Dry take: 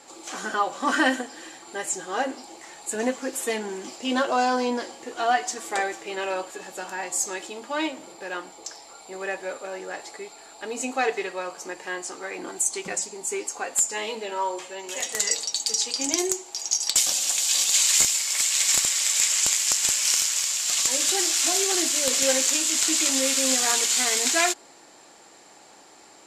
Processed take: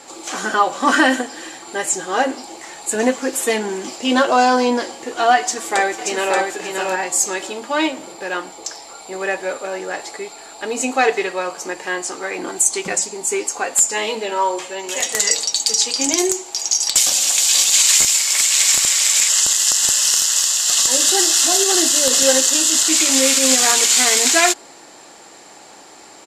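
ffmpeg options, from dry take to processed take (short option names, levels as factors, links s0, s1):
-filter_complex "[0:a]asplit=2[s0][s1];[s1]afade=t=in:st=5.4:d=0.01,afade=t=out:st=6.37:d=0.01,aecho=0:1:580|1160|1740:0.668344|0.100252|0.0150377[s2];[s0][s2]amix=inputs=2:normalize=0,asettb=1/sr,asplit=3[s3][s4][s5];[s3]atrim=end=19.294[s6];[s4]atrim=start=19.29:end=22.89,asetpts=PTS-STARTPTS,afade=t=in:d=0.004:c=qsin,afade=t=out:st=3.596:d=0.004:c=qsin,asuperstop=centerf=2300:order=4:qfactor=4.1[s7];[s5]atrim=start=22.886[s8];[s6][s7]acrossfade=d=0.004:c1=hsin:c2=qsin[s9];[s9][s8]acrossfade=d=0.004:c1=qsin:c2=hsin,alimiter=level_in=2.99:limit=0.891:release=50:level=0:latency=1,volume=0.891"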